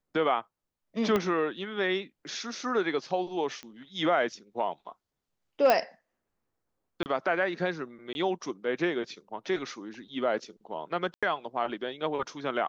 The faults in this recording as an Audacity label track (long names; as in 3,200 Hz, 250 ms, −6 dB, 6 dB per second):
1.160000	1.160000	click −14 dBFS
3.630000	3.630000	click −26 dBFS
5.700000	5.700000	click −10 dBFS
7.030000	7.060000	drop-out 29 ms
8.130000	8.150000	drop-out 21 ms
11.140000	11.230000	drop-out 86 ms